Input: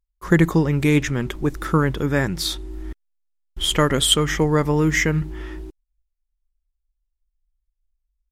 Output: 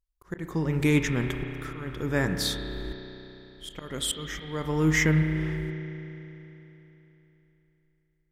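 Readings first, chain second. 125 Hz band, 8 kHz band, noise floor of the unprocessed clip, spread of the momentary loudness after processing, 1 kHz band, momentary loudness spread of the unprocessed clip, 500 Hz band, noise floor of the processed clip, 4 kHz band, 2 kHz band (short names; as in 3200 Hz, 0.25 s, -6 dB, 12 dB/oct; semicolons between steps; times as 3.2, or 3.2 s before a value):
-6.0 dB, -8.5 dB, -78 dBFS, 20 LU, -11.5 dB, 17 LU, -9.5 dB, -72 dBFS, -11.0 dB, -5.5 dB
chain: auto swell 0.505 s; spring tank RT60 3.5 s, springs 32 ms, chirp 35 ms, DRR 5.5 dB; gain -4.5 dB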